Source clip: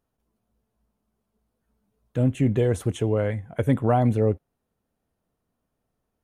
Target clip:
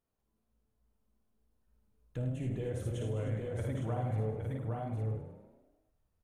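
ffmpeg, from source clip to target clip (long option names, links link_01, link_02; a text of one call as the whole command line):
ffmpeg -i in.wav -filter_complex "[0:a]bandreject=frequency=46.34:width_type=h:width=4,bandreject=frequency=92.68:width_type=h:width=4,bandreject=frequency=139.02:width_type=h:width=4,bandreject=frequency=185.36:width_type=h:width=4,bandreject=frequency=231.7:width_type=h:width=4,bandreject=frequency=278.04:width_type=h:width=4,bandreject=frequency=324.38:width_type=h:width=4,bandreject=frequency=370.72:width_type=h:width=4,bandreject=frequency=417.06:width_type=h:width=4,bandreject=frequency=463.4:width_type=h:width=4,bandreject=frequency=509.74:width_type=h:width=4,bandreject=frequency=556.08:width_type=h:width=4,bandreject=frequency=602.42:width_type=h:width=4,bandreject=frequency=648.76:width_type=h:width=4,bandreject=frequency=695.1:width_type=h:width=4,bandreject=frequency=741.44:width_type=h:width=4,bandreject=frequency=787.78:width_type=h:width=4,bandreject=frequency=834.12:width_type=h:width=4,bandreject=frequency=880.46:width_type=h:width=4,bandreject=frequency=926.8:width_type=h:width=4,bandreject=frequency=973.14:width_type=h:width=4,bandreject=frequency=1019.48:width_type=h:width=4,bandreject=frequency=1065.82:width_type=h:width=4,bandreject=frequency=1112.16:width_type=h:width=4,bandreject=frequency=1158.5:width_type=h:width=4,bandreject=frequency=1204.84:width_type=h:width=4,bandreject=frequency=1251.18:width_type=h:width=4,bandreject=frequency=1297.52:width_type=h:width=4,bandreject=frequency=1343.86:width_type=h:width=4,bandreject=frequency=1390.2:width_type=h:width=4,bandreject=frequency=1436.54:width_type=h:width=4,bandreject=frequency=1482.88:width_type=h:width=4,bandreject=frequency=1529.22:width_type=h:width=4,bandreject=frequency=1575.56:width_type=h:width=4,bandreject=frequency=1621.9:width_type=h:width=4,bandreject=frequency=1668.24:width_type=h:width=4,bandreject=frequency=1714.58:width_type=h:width=4,asplit=2[link_01][link_02];[link_02]aecho=0:1:55|78|307|813|858:0.562|0.501|0.251|0.501|0.447[link_03];[link_01][link_03]amix=inputs=2:normalize=0,acompressor=threshold=-29dB:ratio=2.5,asplit=2[link_04][link_05];[link_05]asplit=7[link_06][link_07][link_08][link_09][link_10][link_11][link_12];[link_06]adelay=103,afreqshift=30,volume=-11dB[link_13];[link_07]adelay=206,afreqshift=60,volume=-15.7dB[link_14];[link_08]adelay=309,afreqshift=90,volume=-20.5dB[link_15];[link_09]adelay=412,afreqshift=120,volume=-25.2dB[link_16];[link_10]adelay=515,afreqshift=150,volume=-29.9dB[link_17];[link_11]adelay=618,afreqshift=180,volume=-34.7dB[link_18];[link_12]adelay=721,afreqshift=210,volume=-39.4dB[link_19];[link_13][link_14][link_15][link_16][link_17][link_18][link_19]amix=inputs=7:normalize=0[link_20];[link_04][link_20]amix=inputs=2:normalize=0,asubboost=boost=6:cutoff=89,volume=-8.5dB" out.wav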